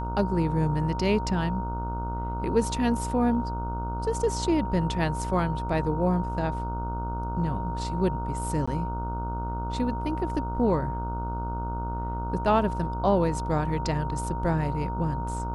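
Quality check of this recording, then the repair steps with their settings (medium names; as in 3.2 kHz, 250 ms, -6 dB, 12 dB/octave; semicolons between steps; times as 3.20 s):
buzz 60 Hz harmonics 25 -32 dBFS
whine 930 Hz -33 dBFS
8.66–8.68 s: dropout 15 ms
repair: band-stop 930 Hz, Q 30; de-hum 60 Hz, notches 25; interpolate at 8.66 s, 15 ms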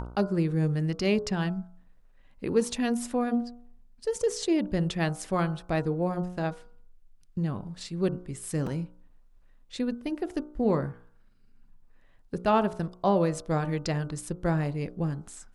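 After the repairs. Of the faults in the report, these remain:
nothing left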